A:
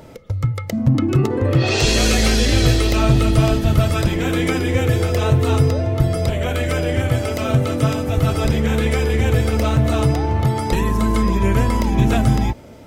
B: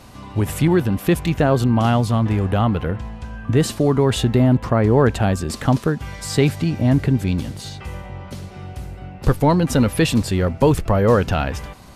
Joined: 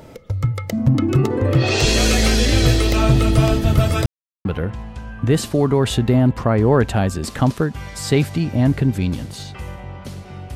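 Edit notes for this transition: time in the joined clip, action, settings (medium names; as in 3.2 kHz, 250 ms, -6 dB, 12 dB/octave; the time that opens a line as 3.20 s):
A
4.06–4.45 s: mute
4.45 s: go over to B from 2.71 s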